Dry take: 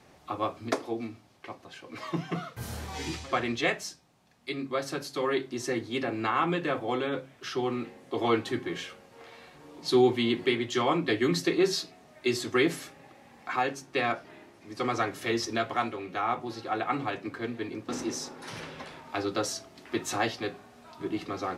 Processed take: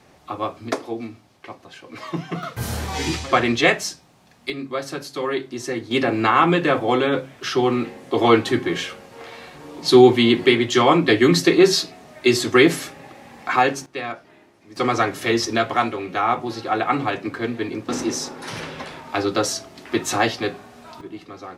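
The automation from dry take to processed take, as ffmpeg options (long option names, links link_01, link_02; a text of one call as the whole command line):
ffmpeg -i in.wav -af "asetnsamples=nb_out_samples=441:pad=0,asendcmd='2.43 volume volume 11dB;4.5 volume volume 4dB;5.91 volume volume 11dB;13.86 volume volume -1dB;14.76 volume volume 9dB;21.01 volume volume -3.5dB',volume=4.5dB" out.wav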